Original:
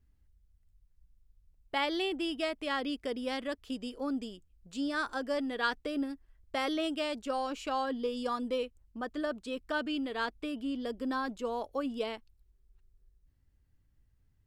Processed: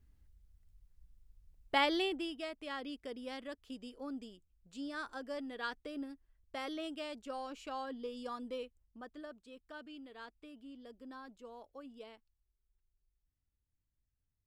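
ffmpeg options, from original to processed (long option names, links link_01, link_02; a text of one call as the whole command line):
ffmpeg -i in.wav -af "volume=2dB,afade=type=out:start_time=1.75:duration=0.6:silence=0.281838,afade=type=out:start_time=8.64:duration=0.78:silence=0.421697" out.wav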